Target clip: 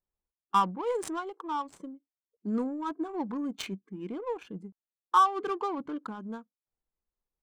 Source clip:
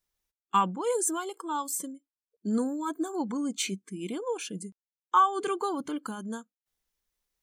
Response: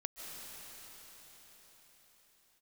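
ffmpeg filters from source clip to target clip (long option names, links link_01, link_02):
-af "adynamicsmooth=sensitivity=4:basefreq=1000,equalizer=frequency=1000:width=1.5:gain=3,volume=-2.5dB"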